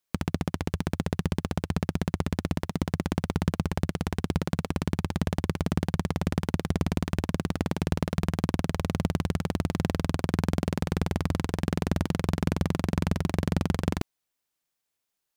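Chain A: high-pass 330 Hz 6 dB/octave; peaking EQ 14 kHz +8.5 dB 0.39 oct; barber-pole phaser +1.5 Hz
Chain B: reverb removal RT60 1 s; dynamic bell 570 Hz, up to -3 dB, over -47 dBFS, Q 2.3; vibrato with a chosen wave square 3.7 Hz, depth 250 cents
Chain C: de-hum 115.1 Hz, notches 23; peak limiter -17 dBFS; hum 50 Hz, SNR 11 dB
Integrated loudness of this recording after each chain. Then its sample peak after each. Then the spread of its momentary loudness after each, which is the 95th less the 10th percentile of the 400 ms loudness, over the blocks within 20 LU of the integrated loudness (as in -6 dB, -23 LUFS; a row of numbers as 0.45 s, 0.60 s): -37.5 LUFS, -31.0 LUFS, -33.5 LUFS; -14.5 dBFS, -10.5 dBFS, -16.5 dBFS; 3 LU, 3 LU, 3 LU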